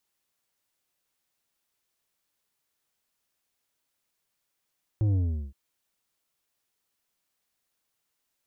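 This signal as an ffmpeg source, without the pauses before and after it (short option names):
-f lavfi -i "aevalsrc='0.0794*clip((0.52-t)/0.39,0,1)*tanh(2.51*sin(2*PI*110*0.52/log(65/110)*(exp(log(65/110)*t/0.52)-1)))/tanh(2.51)':d=0.52:s=44100"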